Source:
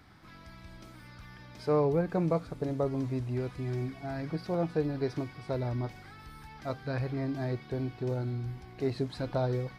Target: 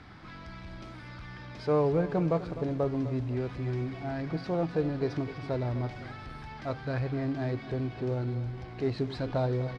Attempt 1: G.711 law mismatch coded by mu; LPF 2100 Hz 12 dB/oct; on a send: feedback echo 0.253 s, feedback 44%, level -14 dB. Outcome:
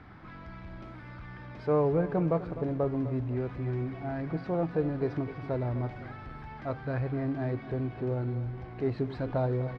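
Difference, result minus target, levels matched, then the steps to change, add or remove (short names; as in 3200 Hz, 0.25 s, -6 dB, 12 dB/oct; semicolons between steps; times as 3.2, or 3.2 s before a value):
4000 Hz band -9.0 dB
change: LPF 4600 Hz 12 dB/oct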